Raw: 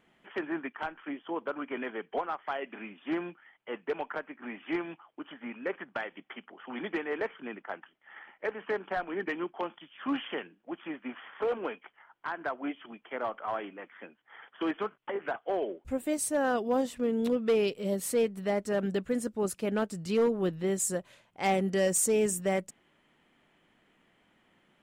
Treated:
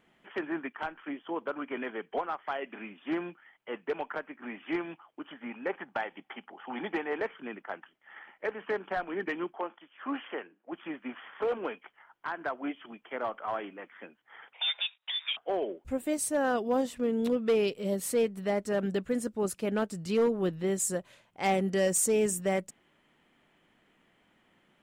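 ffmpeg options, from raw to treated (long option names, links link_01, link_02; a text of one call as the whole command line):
ffmpeg -i in.wav -filter_complex "[0:a]asettb=1/sr,asplit=3[link_01][link_02][link_03];[link_01]atrim=end=5.504[link_04];[link_02]atrim=start=5.5:end=7.21,asetpts=PTS-STARTPTS,afade=type=in:duration=0.004:curve=qsin,afade=type=out:start_time=1.706:duration=0.004:curve=qsin,equalizer=frequency=820:width=4.9:gain=9.5[link_05];[link_03]atrim=start=7.206[link_06];[link_04][link_05]acrossfade=duration=0.004:curve1=hsin:curve2=qsin[link_07];[link_07][link_06]acrossfade=duration=0.004:curve1=qsin:curve2=hsin,asplit=3[link_08][link_09][link_10];[link_08]afade=type=out:start_time=9.55:duration=0.02[link_11];[link_09]highpass=310,lowpass=2100,afade=type=in:start_time=9.55:duration=0.02,afade=type=out:start_time=10.71:duration=0.02[link_12];[link_10]afade=type=in:start_time=10.71:duration=0.02[link_13];[link_11][link_12][link_13]amix=inputs=3:normalize=0,asettb=1/sr,asplit=3[link_14][link_15][link_16];[link_14]atrim=end=14.534[link_17];[link_15]atrim=start=14.53:end=15.37,asetpts=PTS-STARTPTS,afade=type=in:duration=0.004:curve=qsin,afade=type=out:start_time=0.836:duration=0.004:curve=qsin,lowpass=frequency=3300:width_type=q:width=0.5098,lowpass=frequency=3300:width_type=q:width=0.6013,lowpass=frequency=3300:width_type=q:width=0.9,lowpass=frequency=3300:width_type=q:width=2.563,afreqshift=-3900[link_18];[link_16]atrim=start=15.366[link_19];[link_17][link_18]acrossfade=duration=0.004:curve1=hsin:curve2=qsin[link_20];[link_20][link_19]acrossfade=duration=0.004:curve1=qsin:curve2=hsin" out.wav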